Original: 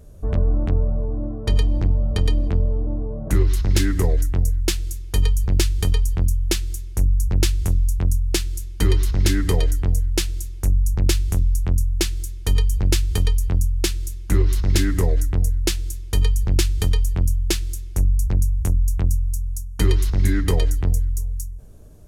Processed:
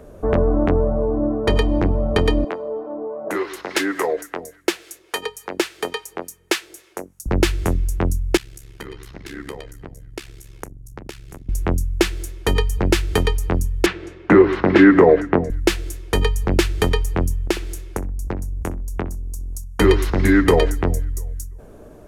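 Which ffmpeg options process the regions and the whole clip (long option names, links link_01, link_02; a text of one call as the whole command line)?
ffmpeg -i in.wav -filter_complex "[0:a]asettb=1/sr,asplit=3[link_01][link_02][link_03];[link_01]atrim=end=2.444[link_04];[link_02]atrim=start=2.44:end=7.26,asetpts=PTS-STARTPTS,afade=type=in:duration=0.004:curve=qsin,afade=type=out:start_time=4.816:duration=0.004:curve=qsin,highpass=470,acrossover=split=760[link_05][link_06];[link_05]aeval=exprs='val(0)*(1-0.5/2+0.5/2*cos(2*PI*3.5*n/s))':channel_layout=same[link_07];[link_06]aeval=exprs='val(0)*(1-0.5/2-0.5/2*cos(2*PI*3.5*n/s))':channel_layout=same[link_08];[link_07][link_08]amix=inputs=2:normalize=0[link_09];[link_03]atrim=start=7.256[link_10];[link_04][link_09]acrossfade=duration=0.004:curve1=hsin:curve2=qsin[link_11];[link_11][link_10]acrossfade=duration=0.004:curve1=qsin:curve2=hsin,asettb=1/sr,asplit=3[link_12][link_13][link_14];[link_12]atrim=end=8.374[link_15];[link_13]atrim=start=8.37:end=11.49,asetpts=PTS-STARTPTS,afade=type=in:duration=0.004:curve=qsin,afade=type=out:start_time=3.116:duration=0.004:curve=qsin,tiltshelf=frequency=1300:gain=-3.5,acompressor=threshold=-31dB:ratio=10:attack=3.2:release=140:knee=1:detection=peak,tremolo=f=68:d=0.889[link_16];[link_14]atrim=start=11.486[link_17];[link_15][link_16]acrossfade=duration=0.004:curve1=hsin:curve2=qsin[link_18];[link_18][link_17]acrossfade=duration=0.004:curve1=qsin:curve2=hsin,asettb=1/sr,asplit=3[link_19][link_20][link_21];[link_19]atrim=end=13.864[link_22];[link_20]atrim=start=13.86:end=15.5,asetpts=PTS-STARTPTS,afade=type=in:duration=0.004:curve=qsin,afade=type=out:start_time=1.636:duration=0.004:curve=qsin,highpass=170,lowpass=2200,acontrast=63[link_23];[link_21]atrim=start=15.496[link_24];[link_22][link_23]acrossfade=duration=0.004:curve1=hsin:curve2=qsin[link_25];[link_25][link_24]acrossfade=duration=0.004:curve1=qsin:curve2=hsin,asettb=1/sr,asplit=3[link_26][link_27][link_28];[link_26]atrim=end=17.474[link_29];[link_27]atrim=start=17.47:end=19.64,asetpts=PTS-STARTPTS,afade=type=in:duration=0.004:curve=qsin,afade=type=out:start_time=2.166:duration=0.004:curve=qsin,acompressor=threshold=-22dB:ratio=6:attack=3.2:release=140:knee=1:detection=peak,asplit=2[link_30][link_31];[link_31]adelay=64,lowpass=frequency=2400:poles=1,volume=-15dB,asplit=2[link_32][link_33];[link_33]adelay=64,lowpass=frequency=2400:poles=1,volume=0.22[link_34];[link_30][link_32][link_34]amix=inputs=3:normalize=0,atrim=end_sample=95697[link_35];[link_28]atrim=start=19.636[link_36];[link_29][link_35]acrossfade=duration=0.004:curve1=hsin:curve2=qsin[link_37];[link_37][link_36]acrossfade=duration=0.004:curve1=qsin:curve2=hsin,acrossover=split=240 2400:gain=0.158 1 0.2[link_38][link_39][link_40];[link_38][link_39][link_40]amix=inputs=3:normalize=0,alimiter=level_in=14.5dB:limit=-1dB:release=50:level=0:latency=1,volume=-1dB" out.wav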